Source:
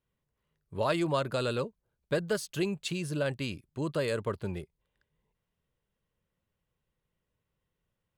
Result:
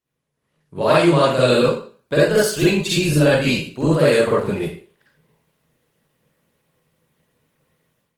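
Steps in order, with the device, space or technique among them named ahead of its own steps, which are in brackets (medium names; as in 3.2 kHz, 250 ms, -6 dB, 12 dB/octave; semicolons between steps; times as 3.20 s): far-field microphone of a smart speaker (reverberation RT60 0.45 s, pre-delay 44 ms, DRR -8 dB; high-pass 150 Hz 12 dB/octave; level rider gain up to 13 dB; trim -1 dB; Opus 20 kbps 48 kHz)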